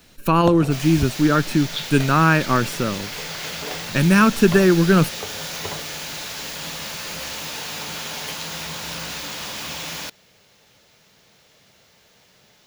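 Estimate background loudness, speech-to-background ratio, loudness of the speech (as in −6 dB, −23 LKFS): −29.0 LKFS, 11.0 dB, −18.0 LKFS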